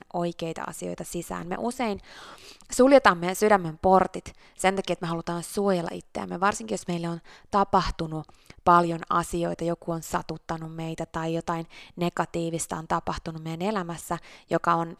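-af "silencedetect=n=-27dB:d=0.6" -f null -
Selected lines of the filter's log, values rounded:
silence_start: 1.94
silence_end: 2.72 | silence_duration: 0.79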